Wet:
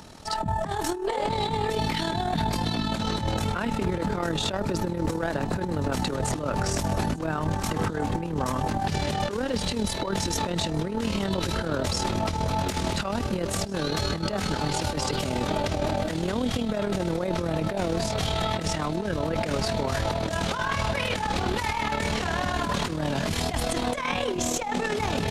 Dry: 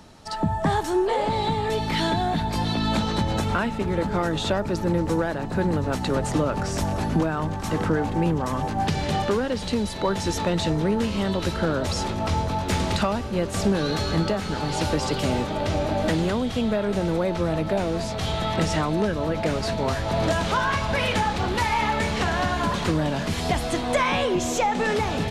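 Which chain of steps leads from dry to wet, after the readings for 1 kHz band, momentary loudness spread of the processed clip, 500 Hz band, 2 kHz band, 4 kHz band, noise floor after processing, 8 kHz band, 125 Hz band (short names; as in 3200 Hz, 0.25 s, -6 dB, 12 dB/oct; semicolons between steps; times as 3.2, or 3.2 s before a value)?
-3.0 dB, 2 LU, -3.5 dB, -3.0 dB, -0.5 dB, -31 dBFS, +1.5 dB, -3.0 dB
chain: negative-ratio compressor -25 dBFS, ratio -0.5; AM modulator 39 Hz, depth 45%; high shelf 5500 Hz +4.5 dB; on a send: thin delay 0.873 s, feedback 82%, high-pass 4400 Hz, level -23.5 dB; on the sum: limiter -20 dBFS, peak gain reduction 7 dB; gain +3.5 dB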